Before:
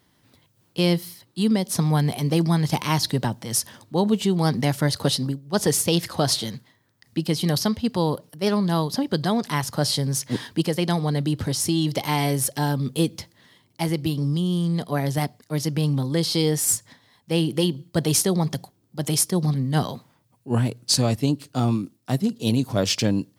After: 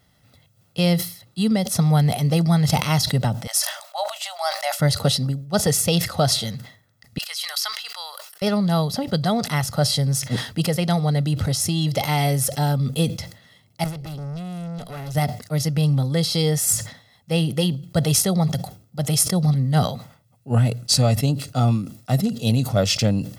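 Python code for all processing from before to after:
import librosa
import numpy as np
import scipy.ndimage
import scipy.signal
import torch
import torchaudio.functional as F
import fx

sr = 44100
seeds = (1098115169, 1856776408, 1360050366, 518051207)

y = fx.chain(x, sr, fx.brickwall_highpass(low_hz=560.0),
    fx.sustainer(db_per_s=96.0), at=(3.47, 4.8))
y = fx.chain(y, sr, fx.highpass(hz=1100.0, slope=24),
    fx.sustainer(db_per_s=47.0), at=(7.18, 8.42))
y = fx.chain(y, sr, fx.highpass(hz=97.0, slope=6),
    fx.tube_stage(drive_db=32.0, bias=0.5), at=(13.84, 15.15))
y = fx.low_shelf(y, sr, hz=180.0, db=3.5)
y = y + 0.61 * np.pad(y, (int(1.5 * sr / 1000.0), 0))[:len(y)]
y = fx.sustainer(y, sr, db_per_s=120.0)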